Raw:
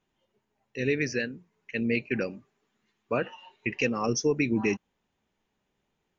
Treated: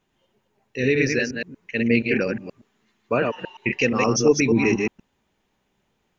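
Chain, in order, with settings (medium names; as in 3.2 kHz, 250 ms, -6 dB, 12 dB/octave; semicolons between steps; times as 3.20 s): chunks repeated in reverse 119 ms, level -3.5 dB; trim +6 dB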